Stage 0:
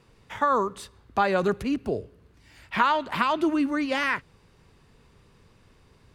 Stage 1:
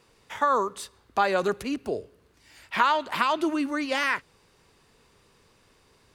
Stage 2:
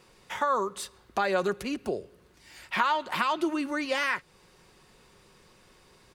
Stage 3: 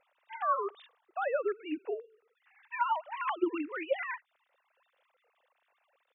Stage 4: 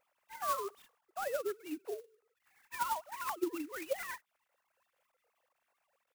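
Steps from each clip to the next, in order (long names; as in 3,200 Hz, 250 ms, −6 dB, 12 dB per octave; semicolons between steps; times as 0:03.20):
bass and treble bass −9 dB, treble +5 dB
comb filter 5.5 ms, depth 33%; downward compressor 1.5 to 1, threshold −36 dBFS, peak gain reduction 7.5 dB; level +2.5 dB
three sine waves on the formant tracks; level −5 dB
converter with an unsteady clock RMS 0.047 ms; level −5 dB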